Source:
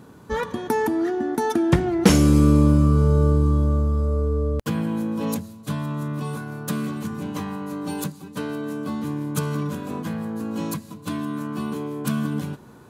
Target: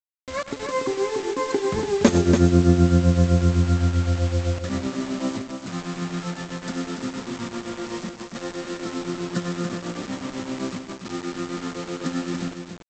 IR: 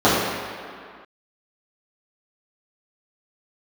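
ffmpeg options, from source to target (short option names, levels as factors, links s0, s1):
-af "equalizer=f=2400:t=o:w=0.25:g=-6.5,asetrate=52444,aresample=44100,atempo=0.840896,tremolo=f=7.8:d=0.78,aresample=16000,acrusher=bits=5:mix=0:aa=0.000001,aresample=44100,aecho=1:1:100|287:0.15|0.501"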